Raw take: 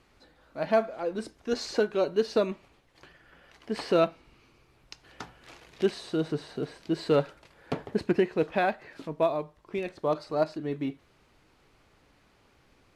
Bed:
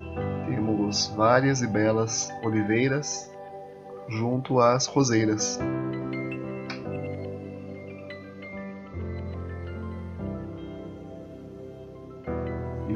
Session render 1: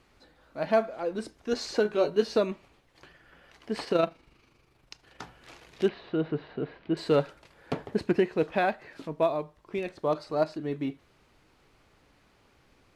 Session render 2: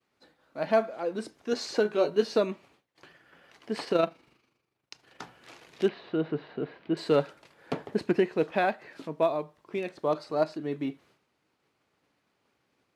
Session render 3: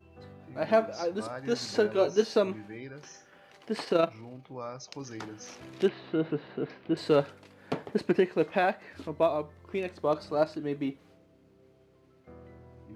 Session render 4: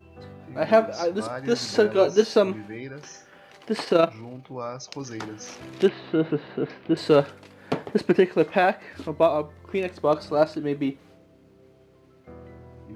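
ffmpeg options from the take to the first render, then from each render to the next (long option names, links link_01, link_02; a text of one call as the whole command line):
ffmpeg -i in.wav -filter_complex "[0:a]asettb=1/sr,asplit=3[link_01][link_02][link_03];[link_01]atrim=end=1.834[link_04];[link_02]atrim=start=1.83:end=2.37,asetpts=PTS-STARTPTS,afade=type=in:duration=0.004:curve=qsin,afade=type=out:start_time=0.536:duration=0.004:curve=qsin,asplit=2[link_05][link_06];[link_06]adelay=19,volume=-5.5dB[link_07];[link_05][link_07]amix=inputs=2:normalize=0,atrim=end_sample=23814[link_08];[link_03]atrim=start=2.366[link_09];[link_04][link_08]acrossfade=duration=0.004:curve1=hsin:curve2=qsin[link_10];[link_10][link_09]acrossfade=duration=0.004:curve1=qsin:curve2=hsin,asettb=1/sr,asplit=3[link_11][link_12][link_13];[link_11]atrim=end=3.844[link_14];[link_12]atrim=start=3.84:end=5.22,asetpts=PTS-STARTPTS,afade=type=in:duration=0.004:curve=qsin,afade=type=out:start_time=1.376:duration=0.004:curve=qsin,tremolo=f=25:d=0.519[link_15];[link_13]atrim=start=5.216[link_16];[link_14][link_15]acrossfade=duration=0.004:curve1=hsin:curve2=qsin[link_17];[link_17][link_16]acrossfade=duration=0.004:curve1=qsin:curve2=hsin,asettb=1/sr,asplit=3[link_18][link_19][link_20];[link_18]atrim=end=5.884[link_21];[link_19]atrim=start=5.88:end=6.97,asetpts=PTS-STARTPTS,afade=type=in:duration=0.004:curve=qsin,afade=type=out:start_time=1.086:duration=0.004:curve=qsin,lowpass=frequency=3000:width=0.5412,lowpass=frequency=3000:width=1.3066[link_22];[link_20]atrim=start=6.966[link_23];[link_21][link_22]acrossfade=duration=0.004:curve1=hsin:curve2=qsin[link_24];[link_24][link_23]acrossfade=duration=0.004:curve1=qsin:curve2=hsin" out.wav
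ffmpeg -i in.wav -af "highpass=140,agate=range=-33dB:threshold=-56dB:ratio=3:detection=peak" out.wav
ffmpeg -i in.wav -i bed.wav -filter_complex "[1:a]volume=-19.5dB[link_01];[0:a][link_01]amix=inputs=2:normalize=0" out.wav
ffmpeg -i in.wav -af "volume=6dB" out.wav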